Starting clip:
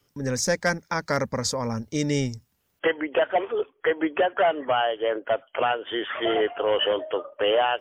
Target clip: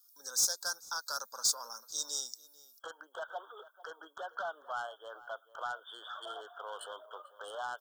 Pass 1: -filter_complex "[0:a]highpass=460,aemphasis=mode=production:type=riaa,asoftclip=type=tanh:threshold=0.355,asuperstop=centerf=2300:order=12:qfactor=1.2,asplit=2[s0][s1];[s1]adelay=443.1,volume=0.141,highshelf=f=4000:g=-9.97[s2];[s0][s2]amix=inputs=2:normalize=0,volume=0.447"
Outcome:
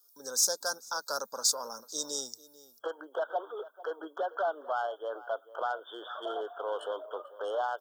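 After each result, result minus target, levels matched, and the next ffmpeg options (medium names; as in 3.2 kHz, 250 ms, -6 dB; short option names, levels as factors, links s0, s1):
500 Hz band +8.5 dB; saturation: distortion -9 dB
-filter_complex "[0:a]highpass=1200,aemphasis=mode=production:type=riaa,asoftclip=type=tanh:threshold=0.355,asuperstop=centerf=2300:order=12:qfactor=1.2,asplit=2[s0][s1];[s1]adelay=443.1,volume=0.141,highshelf=f=4000:g=-9.97[s2];[s0][s2]amix=inputs=2:normalize=0,volume=0.447"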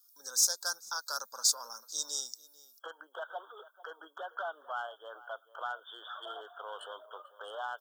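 saturation: distortion -7 dB
-filter_complex "[0:a]highpass=1200,aemphasis=mode=production:type=riaa,asoftclip=type=tanh:threshold=0.168,asuperstop=centerf=2300:order=12:qfactor=1.2,asplit=2[s0][s1];[s1]adelay=443.1,volume=0.141,highshelf=f=4000:g=-9.97[s2];[s0][s2]amix=inputs=2:normalize=0,volume=0.447"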